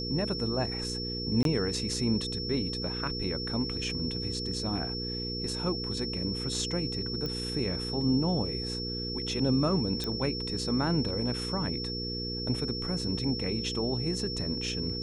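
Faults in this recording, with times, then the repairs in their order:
hum 60 Hz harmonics 8 -37 dBFS
tone 5400 Hz -35 dBFS
1.43–1.45 gap 22 ms
7.26 pop -22 dBFS
10.04 pop -18 dBFS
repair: de-click; de-hum 60 Hz, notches 8; notch 5400 Hz, Q 30; interpolate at 1.43, 22 ms

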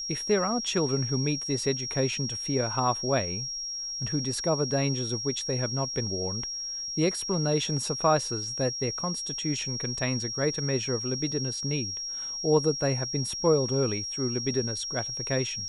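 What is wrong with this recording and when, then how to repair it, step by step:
tone 5600 Hz -32 dBFS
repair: notch 5600 Hz, Q 30

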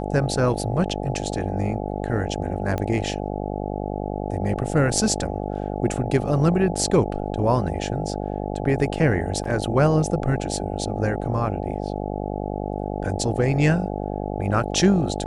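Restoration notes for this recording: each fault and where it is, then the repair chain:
buzz 50 Hz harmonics 17 -28 dBFS
2.78 pop -14 dBFS
9.44 gap 3.8 ms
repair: de-click; de-hum 50 Hz, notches 17; interpolate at 9.44, 3.8 ms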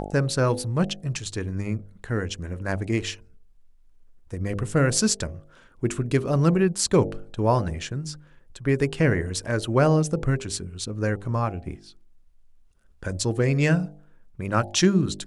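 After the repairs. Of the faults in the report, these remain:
none

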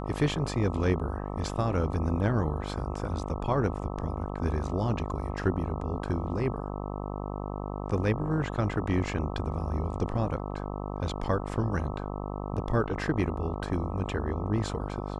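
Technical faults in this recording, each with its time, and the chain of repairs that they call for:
buzz 50 Hz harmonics 26 -35 dBFS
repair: de-hum 50 Hz, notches 26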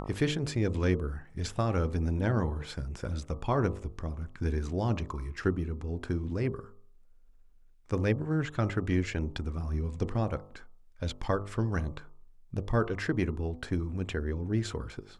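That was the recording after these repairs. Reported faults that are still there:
none

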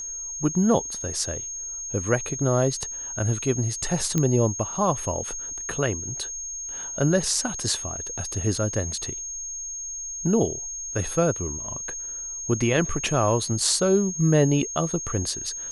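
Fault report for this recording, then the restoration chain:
tone 6500 Hz -31 dBFS
4.18 pop -10 dBFS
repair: de-click; notch 6500 Hz, Q 30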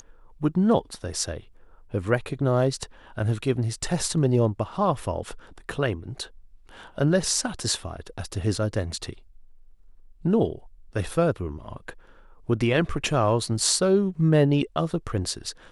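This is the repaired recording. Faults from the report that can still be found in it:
none

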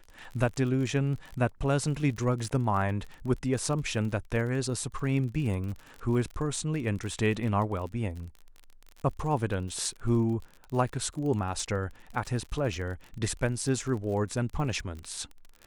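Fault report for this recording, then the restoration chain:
crackle 40/s -36 dBFS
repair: de-click

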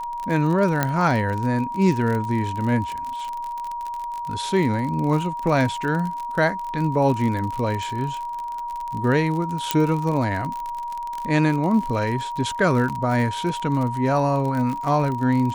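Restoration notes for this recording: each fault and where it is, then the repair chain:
crackle 46/s -26 dBFS
tone 950 Hz -27 dBFS
0.83 pop -6 dBFS
9.71 pop -3 dBFS
12.89–12.9 gap 8.1 ms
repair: de-click; notch 950 Hz, Q 30; interpolate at 12.89, 8.1 ms

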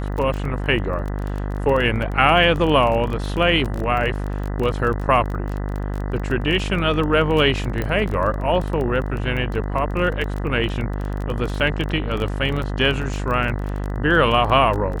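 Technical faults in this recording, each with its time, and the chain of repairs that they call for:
buzz 50 Hz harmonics 40 -25 dBFS
crackle 22/s -25 dBFS
7.82 pop -12 dBFS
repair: de-click; de-hum 50 Hz, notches 40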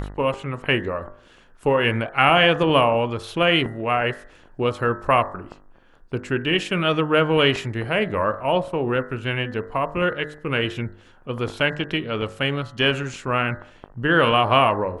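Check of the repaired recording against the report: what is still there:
none

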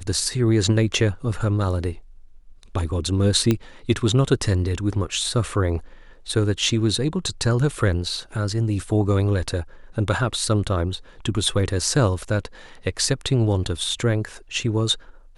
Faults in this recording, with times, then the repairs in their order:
3.51 pop -7 dBFS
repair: de-click

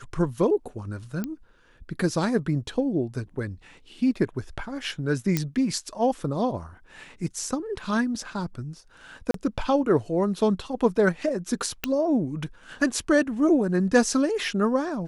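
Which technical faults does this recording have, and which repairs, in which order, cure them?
1.24 pop -17 dBFS
5.37 pop -9 dBFS
9.31–9.34 gap 33 ms
11.84 pop -9 dBFS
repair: de-click; interpolate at 9.31, 33 ms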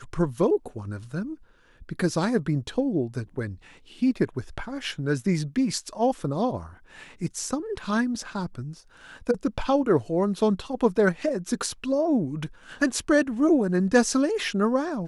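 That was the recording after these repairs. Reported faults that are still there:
none

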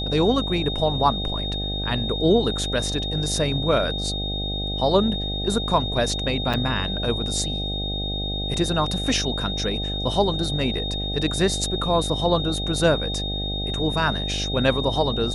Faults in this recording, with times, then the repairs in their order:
buzz 50 Hz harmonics 16 -29 dBFS
tone 3700 Hz -28 dBFS
6.53–6.54 gap 6.7 ms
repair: de-hum 50 Hz, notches 16; notch 3700 Hz, Q 30; interpolate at 6.53, 6.7 ms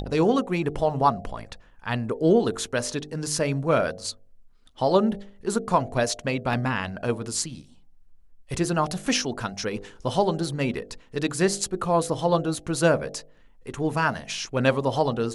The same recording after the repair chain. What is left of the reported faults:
none

